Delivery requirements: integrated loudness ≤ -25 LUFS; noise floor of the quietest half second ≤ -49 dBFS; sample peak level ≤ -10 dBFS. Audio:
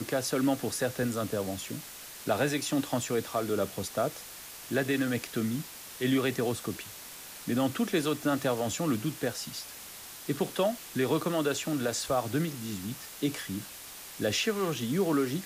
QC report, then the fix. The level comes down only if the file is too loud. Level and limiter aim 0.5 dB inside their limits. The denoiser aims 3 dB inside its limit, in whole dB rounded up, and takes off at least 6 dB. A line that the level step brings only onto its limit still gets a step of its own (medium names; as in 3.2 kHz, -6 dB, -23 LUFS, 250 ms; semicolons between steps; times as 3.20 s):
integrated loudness -31.0 LUFS: pass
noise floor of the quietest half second -45 dBFS: fail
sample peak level -16.0 dBFS: pass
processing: noise reduction 7 dB, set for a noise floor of -45 dBFS